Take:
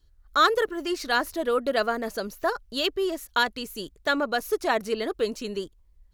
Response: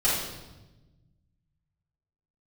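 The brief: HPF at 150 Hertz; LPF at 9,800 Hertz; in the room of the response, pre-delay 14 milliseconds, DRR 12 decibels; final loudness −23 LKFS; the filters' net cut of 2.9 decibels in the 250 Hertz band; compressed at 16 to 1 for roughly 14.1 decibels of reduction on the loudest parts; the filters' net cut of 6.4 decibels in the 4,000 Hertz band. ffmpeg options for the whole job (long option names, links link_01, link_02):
-filter_complex "[0:a]highpass=150,lowpass=9800,equalizer=frequency=250:width_type=o:gain=-3.5,equalizer=frequency=4000:width_type=o:gain=-8,acompressor=threshold=-30dB:ratio=16,asplit=2[link_01][link_02];[1:a]atrim=start_sample=2205,adelay=14[link_03];[link_02][link_03]afir=irnorm=-1:irlink=0,volume=-25dB[link_04];[link_01][link_04]amix=inputs=2:normalize=0,volume=13dB"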